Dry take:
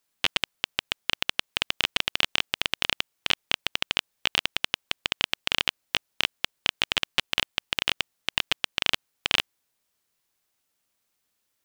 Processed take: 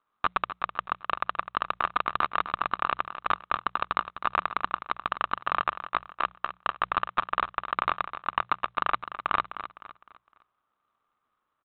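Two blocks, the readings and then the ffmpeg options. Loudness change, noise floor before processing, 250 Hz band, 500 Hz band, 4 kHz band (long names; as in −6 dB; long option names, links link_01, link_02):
−3.0 dB, −77 dBFS, −2.5 dB, +1.0 dB, −17.5 dB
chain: -af "lowpass=frequency=1200:width_type=q:width=7.6,bandreject=frequency=60:width_type=h:width=6,bandreject=frequency=120:width_type=h:width=6,bandreject=frequency=180:width_type=h:width=6,aresample=8000,acrusher=bits=2:mode=log:mix=0:aa=0.000001,aresample=44100,aecho=1:1:255|510|765|1020:0.266|0.0984|0.0364|0.0135,volume=-1dB"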